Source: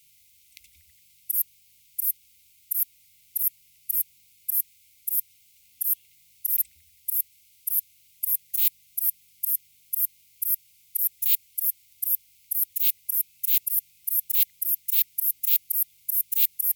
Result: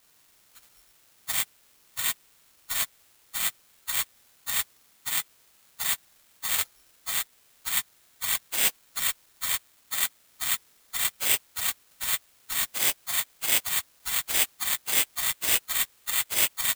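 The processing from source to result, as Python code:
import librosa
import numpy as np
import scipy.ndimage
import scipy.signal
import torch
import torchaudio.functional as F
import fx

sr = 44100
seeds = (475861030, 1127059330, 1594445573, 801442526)

y = fx.pitch_bins(x, sr, semitones=-9.5)
y = (np.kron(y[::8], np.eye(8)[0]) * 8)[:len(y)]
y = y * 10.0 ** (-9.0 / 20.0)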